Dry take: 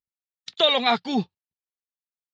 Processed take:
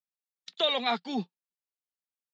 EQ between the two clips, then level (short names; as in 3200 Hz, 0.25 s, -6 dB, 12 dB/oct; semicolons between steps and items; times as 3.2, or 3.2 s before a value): steep high-pass 170 Hz 48 dB/oct; -7.5 dB